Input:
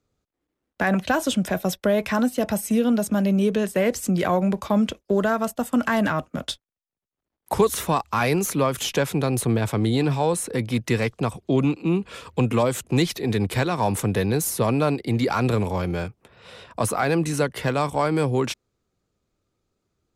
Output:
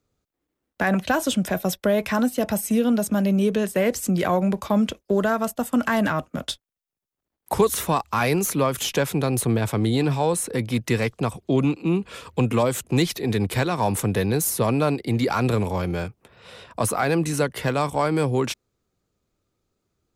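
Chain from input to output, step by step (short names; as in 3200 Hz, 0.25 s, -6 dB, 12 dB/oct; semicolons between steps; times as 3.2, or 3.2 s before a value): high shelf 12000 Hz +6 dB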